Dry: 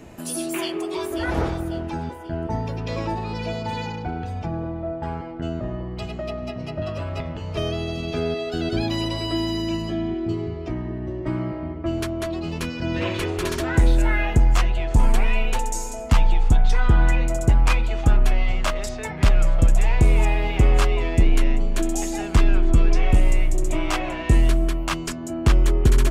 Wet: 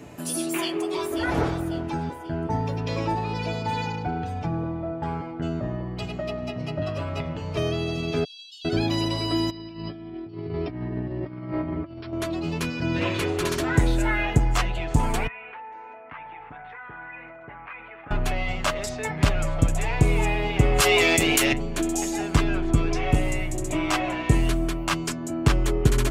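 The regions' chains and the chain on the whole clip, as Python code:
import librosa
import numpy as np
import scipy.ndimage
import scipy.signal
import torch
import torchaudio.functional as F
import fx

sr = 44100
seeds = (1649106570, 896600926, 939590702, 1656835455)

y = fx.chain(x, sr, fx.steep_highpass(hz=2900.0, slope=96),
    fx.high_shelf(hz=6000.0, db=-11.5), at=(8.24, 8.65))
y = fx.chain(y, sr, fx.brickwall_lowpass(high_hz=5600.0),
    fx.over_compress(threshold_db=-31.0, ratio=-0.5), at=(9.5, 12.13))
y = fx.chain(y, sr, fx.steep_lowpass(hz=2100.0, slope=36),
    fx.differentiator(),
    fx.env_flatten(amount_pct=70), at=(15.27, 18.11))
y = fx.chain(y, sr, fx.riaa(side='recording'),
    fx.notch(hz=990.0, q=23.0),
    fx.env_flatten(amount_pct=100), at=(20.8, 21.53))
y = scipy.signal.sosfilt(scipy.signal.butter(2, 60.0, 'highpass', fs=sr, output='sos'), y)
y = y + 0.35 * np.pad(y, (int(6.9 * sr / 1000.0), 0))[:len(y)]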